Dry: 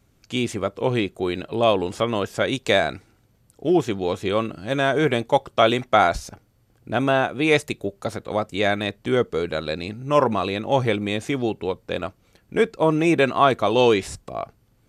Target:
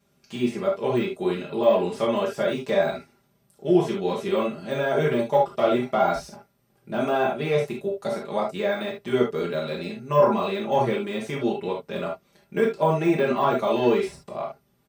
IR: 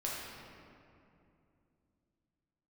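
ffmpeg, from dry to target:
-filter_complex "[0:a]deesser=0.9,highpass=89,bandreject=frequency=7000:width=13,aecho=1:1:5:0.94[link_01];[1:a]atrim=start_sample=2205,atrim=end_sample=3528[link_02];[link_01][link_02]afir=irnorm=-1:irlink=0,volume=-4dB"

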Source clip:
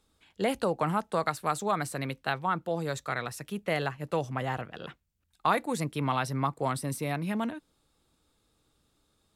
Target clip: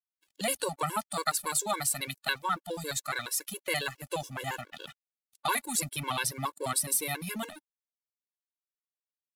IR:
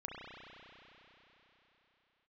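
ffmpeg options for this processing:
-af "crystalizer=i=8.5:c=0,aeval=exprs='sgn(val(0))*max(abs(val(0))-0.00596,0)':channel_layout=same,afftfilt=real='re*gt(sin(2*PI*7.2*pts/sr)*(1-2*mod(floor(b*sr/1024/290),2)),0)':imag='im*gt(sin(2*PI*7.2*pts/sr)*(1-2*mod(floor(b*sr/1024/290),2)),0)':win_size=1024:overlap=0.75,volume=-3.5dB"

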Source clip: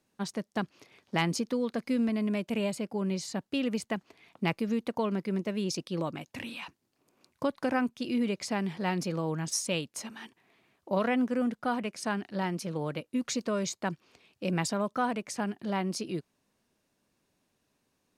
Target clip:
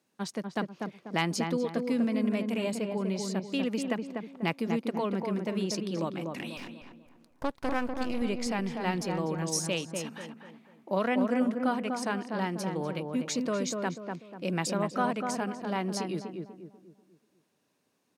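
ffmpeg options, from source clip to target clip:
ffmpeg -i in.wav -filter_complex "[0:a]highpass=150,asettb=1/sr,asplit=3[link_01][link_02][link_03];[link_01]atrim=end=6.574[link_04];[link_02]atrim=start=6.57:end=8.22,asetpts=PTS-STARTPTS,afade=type=in:duration=0.004:curve=qsin,afade=type=out:start_time=1.646:duration=0.004:curve=qsin,aeval=exprs='max(val(0),0)':channel_layout=same[link_05];[link_03]atrim=start=8.216[link_06];[link_04][link_05]acrossfade=duration=0.004:curve1=hsin:curve2=qsin[link_07];[link_07][link_06]acrossfade=duration=0.004:curve1=qsin:curve2=hsin,asplit=2[link_08][link_09];[link_09]adelay=245,lowpass=frequency=1300:poles=1,volume=-3.5dB,asplit=2[link_10][link_11];[link_11]adelay=245,lowpass=frequency=1300:poles=1,volume=0.41,asplit=2[link_12][link_13];[link_13]adelay=245,lowpass=frequency=1300:poles=1,volume=0.41,asplit=2[link_14][link_15];[link_15]adelay=245,lowpass=frequency=1300:poles=1,volume=0.41,asplit=2[link_16][link_17];[link_17]adelay=245,lowpass=frequency=1300:poles=1,volume=0.41[link_18];[link_10][link_12][link_14][link_16][link_18]amix=inputs=5:normalize=0[link_19];[link_08][link_19]amix=inputs=2:normalize=0" out.wav

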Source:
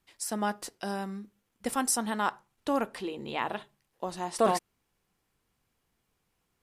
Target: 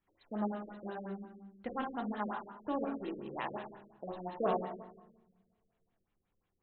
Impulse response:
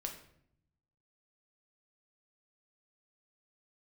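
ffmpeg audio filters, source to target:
-filter_complex "[0:a]bandreject=frequency=113.8:width_type=h:width=4,bandreject=frequency=227.6:width_type=h:width=4,bandreject=frequency=341.4:width_type=h:width=4,bandreject=frequency=455.2:width_type=h:width=4,bandreject=frequency=569:width_type=h:width=4,bandreject=frequency=682.8:width_type=h:width=4,bandreject=frequency=796.6:width_type=h:width=4,bandreject=frequency=910.4:width_type=h:width=4,bandreject=frequency=1024.2:width_type=h:width=4,bandreject=frequency=1138:width_type=h:width=4,bandreject=frequency=1251.8:width_type=h:width=4,bandreject=frequency=1365.6:width_type=h:width=4,bandreject=frequency=1479.4:width_type=h:width=4,bandreject=frequency=1593.2:width_type=h:width=4,bandreject=frequency=1707:width_type=h:width=4,bandreject=frequency=1820.8:width_type=h:width=4,bandreject=frequency=1934.6:width_type=h:width=4,bandreject=frequency=2048.4:width_type=h:width=4,bandreject=frequency=2162.2:width_type=h:width=4,bandreject=frequency=2276:width_type=h:width=4,bandreject=frequency=2389.8:width_type=h:width=4,bandreject=frequency=2503.6:width_type=h:width=4,bandreject=frequency=2617.4:width_type=h:width=4,bandreject=frequency=2731.2:width_type=h:width=4,bandreject=frequency=2845:width_type=h:width=4,bandreject=frequency=2958.8:width_type=h:width=4,bandreject=frequency=3072.6:width_type=h:width=4,bandreject=frequency=3186.4:width_type=h:width=4,bandreject=frequency=3300.2:width_type=h:width=4,bandreject=frequency=3414:width_type=h:width=4,bandreject=frequency=3527.8:width_type=h:width=4,bandreject=frequency=3641.6:width_type=h:width=4,bandreject=frequency=3755.4:width_type=h:width=4,bandreject=frequency=3869.2:width_type=h:width=4,bandreject=frequency=3983:width_type=h:width=4[link_01];[1:a]atrim=start_sample=2205,asetrate=27783,aresample=44100[link_02];[link_01][link_02]afir=irnorm=-1:irlink=0,afftfilt=real='re*lt(b*sr/1024,560*pow(4300/560,0.5+0.5*sin(2*PI*5.6*pts/sr)))':imag='im*lt(b*sr/1024,560*pow(4300/560,0.5+0.5*sin(2*PI*5.6*pts/sr)))':win_size=1024:overlap=0.75,volume=-7dB"

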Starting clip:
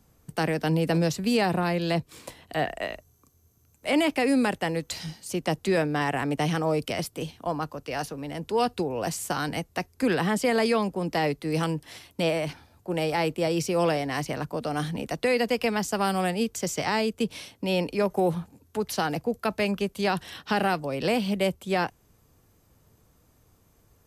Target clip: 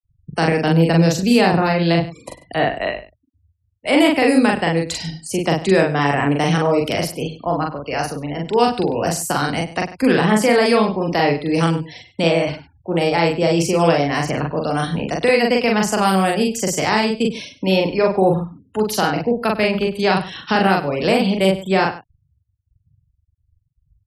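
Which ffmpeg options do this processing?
ffmpeg -i in.wav -filter_complex "[0:a]afftfilt=real='re*gte(hypot(re,im),0.00891)':imag='im*gte(hypot(re,im),0.00891)':win_size=1024:overlap=0.75,asplit=2[link_01][link_02];[link_02]adelay=42,volume=-2dB[link_03];[link_01][link_03]amix=inputs=2:normalize=0,asplit=2[link_04][link_05];[link_05]adelay=99.13,volume=-15dB,highshelf=frequency=4000:gain=-2.23[link_06];[link_04][link_06]amix=inputs=2:normalize=0,volume=7dB" out.wav

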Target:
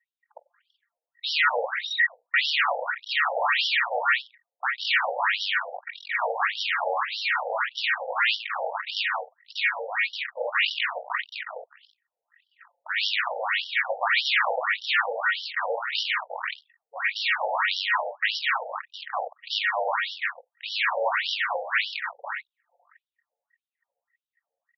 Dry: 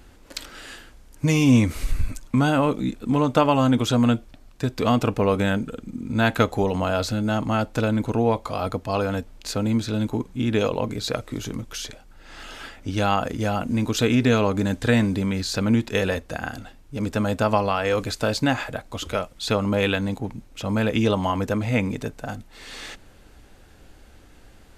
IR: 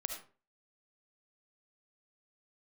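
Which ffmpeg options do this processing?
-filter_complex "[0:a]aeval=exprs='val(0)*sin(2*PI*940*n/s)':channel_layout=same,equalizer=frequency=4600:width_type=o:width=1.6:gain=-10,bandreject=frequency=50:width_type=h:width=6,bandreject=frequency=100:width_type=h:width=6,bandreject=frequency=150:width_type=h:width=6,bandreject=frequency=200:width_type=h:width=6,bandreject=frequency=250:width_type=h:width=6,bandreject=frequency=300:width_type=h:width=6,bandreject=frequency=350:width_type=h:width=6,bandreject=frequency=400:width_type=h:width=6,bandreject=frequency=450:width_type=h:width=6,asplit=2[link_01][link_02];[link_02]aecho=0:1:20|48|87.2|142.1|218.9:0.631|0.398|0.251|0.158|0.1[link_03];[link_01][link_03]amix=inputs=2:normalize=0,asoftclip=type=tanh:threshold=-14.5dB,acontrast=41,aeval=exprs='abs(val(0))':channel_layout=same,anlmdn=10,highshelf=frequency=7800:gain=3.5,afftfilt=real='re*between(b*sr/1024,610*pow(4100/610,0.5+0.5*sin(2*PI*1.7*pts/sr))/1.41,610*pow(4100/610,0.5+0.5*sin(2*PI*1.7*pts/sr))*1.41)':imag='im*between(b*sr/1024,610*pow(4100/610,0.5+0.5*sin(2*PI*1.7*pts/sr))/1.41,610*pow(4100/610,0.5+0.5*sin(2*PI*1.7*pts/sr))*1.41)':win_size=1024:overlap=0.75,volume=5.5dB"

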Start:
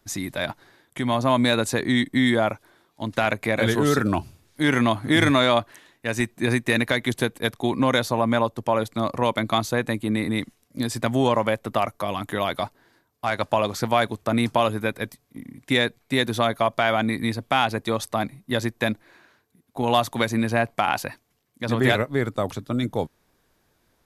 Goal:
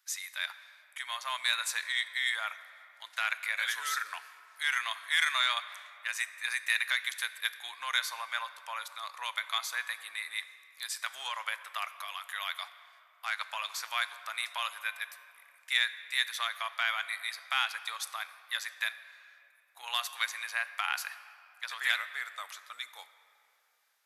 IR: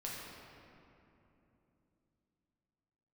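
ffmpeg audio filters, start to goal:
-filter_complex "[0:a]highpass=frequency=1300:width=0.5412,highpass=frequency=1300:width=1.3066,asplit=2[link_01][link_02];[1:a]atrim=start_sample=2205,highshelf=frequency=7700:gain=7[link_03];[link_02][link_03]afir=irnorm=-1:irlink=0,volume=-10.5dB[link_04];[link_01][link_04]amix=inputs=2:normalize=0,volume=-5.5dB"

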